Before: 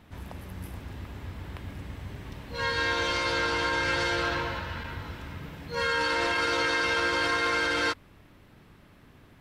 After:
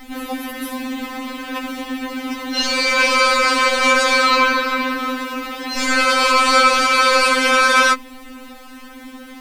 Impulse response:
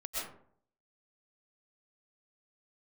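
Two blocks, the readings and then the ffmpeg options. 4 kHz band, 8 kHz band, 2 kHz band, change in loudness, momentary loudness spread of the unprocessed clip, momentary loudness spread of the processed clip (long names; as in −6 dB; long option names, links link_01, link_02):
+12.5 dB, +17.0 dB, +11.0 dB, +12.0 dB, 16 LU, 15 LU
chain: -af "apsyclip=27dB,acrusher=bits=5:mix=0:aa=0.5,afftfilt=real='re*3.46*eq(mod(b,12),0)':imag='im*3.46*eq(mod(b,12),0)':win_size=2048:overlap=0.75,volume=-5.5dB"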